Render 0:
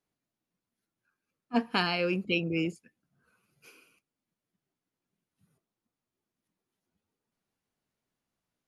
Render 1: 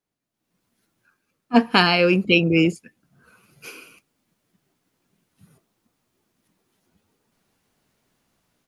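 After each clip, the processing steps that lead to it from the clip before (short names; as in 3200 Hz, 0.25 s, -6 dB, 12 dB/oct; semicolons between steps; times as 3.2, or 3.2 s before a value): AGC gain up to 16.5 dB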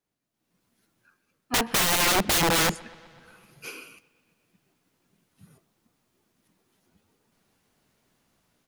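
wrapped overs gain 17 dB; dark delay 0.125 s, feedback 69%, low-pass 3900 Hz, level -24 dB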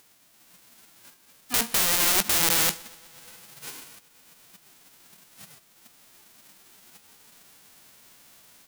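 spectral whitening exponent 0.1; upward compressor, threshold -39 dBFS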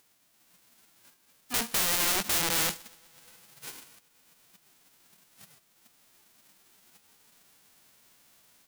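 soft clip -13.5 dBFS, distortion -13 dB; in parallel at -3.5 dB: bit-crush 6-bit; on the sum: gain -7.5 dB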